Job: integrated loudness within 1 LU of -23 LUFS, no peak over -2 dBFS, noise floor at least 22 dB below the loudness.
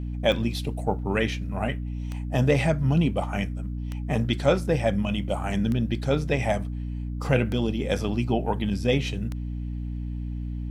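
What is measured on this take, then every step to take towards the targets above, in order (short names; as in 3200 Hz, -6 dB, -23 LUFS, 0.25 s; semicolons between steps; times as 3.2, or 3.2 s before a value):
clicks 6; hum 60 Hz; harmonics up to 300 Hz; hum level -28 dBFS; loudness -26.5 LUFS; peak -6.5 dBFS; loudness target -23.0 LUFS
-> de-click; notches 60/120/180/240/300 Hz; gain +3.5 dB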